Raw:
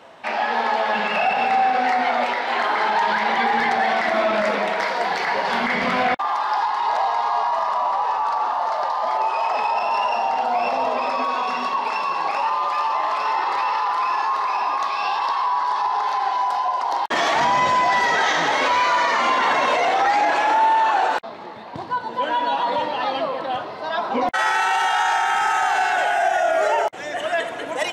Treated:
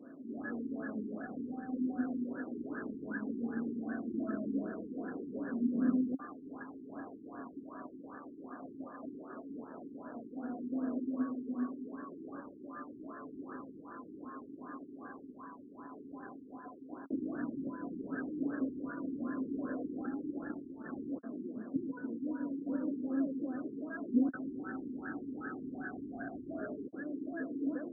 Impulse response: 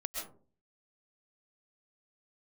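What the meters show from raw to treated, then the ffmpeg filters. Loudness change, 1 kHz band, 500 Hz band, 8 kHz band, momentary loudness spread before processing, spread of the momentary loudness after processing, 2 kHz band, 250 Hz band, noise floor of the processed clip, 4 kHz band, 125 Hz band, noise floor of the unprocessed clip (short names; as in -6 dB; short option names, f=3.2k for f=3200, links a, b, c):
-19.5 dB, -34.5 dB, -21.0 dB, under -40 dB, 6 LU, 13 LU, -27.0 dB, -0.5 dB, -52 dBFS, under -40 dB, n/a, -32 dBFS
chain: -filter_complex "[0:a]asoftclip=type=hard:threshold=-22dB,alimiter=level_in=3dB:limit=-24dB:level=0:latency=1:release=182,volume=-3dB,asplit=3[a][b][c];[a]bandpass=f=270:t=q:w=8,volume=0dB[d];[b]bandpass=f=2.29k:t=q:w=8,volume=-6dB[e];[c]bandpass=f=3.01k:t=q:w=8,volume=-9dB[f];[d][e][f]amix=inputs=3:normalize=0,afftfilt=real='re*lt(b*sr/1024,420*pow(1800/420,0.5+0.5*sin(2*PI*2.6*pts/sr)))':imag='im*lt(b*sr/1024,420*pow(1800/420,0.5+0.5*sin(2*PI*2.6*pts/sr)))':win_size=1024:overlap=0.75,volume=13.5dB"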